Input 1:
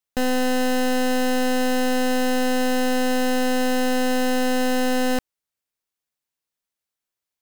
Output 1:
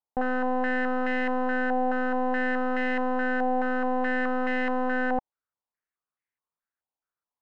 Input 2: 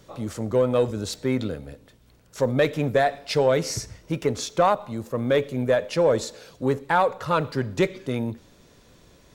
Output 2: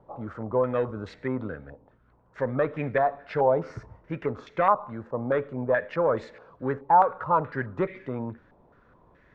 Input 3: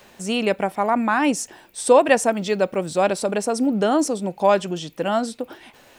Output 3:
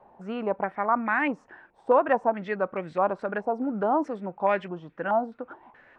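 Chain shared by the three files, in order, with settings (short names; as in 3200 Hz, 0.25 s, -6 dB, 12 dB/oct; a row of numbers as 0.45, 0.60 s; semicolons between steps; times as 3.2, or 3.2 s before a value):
stepped low-pass 4.7 Hz 860–2000 Hz; match loudness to -27 LUFS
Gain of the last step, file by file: -7.0, -6.0, -9.0 dB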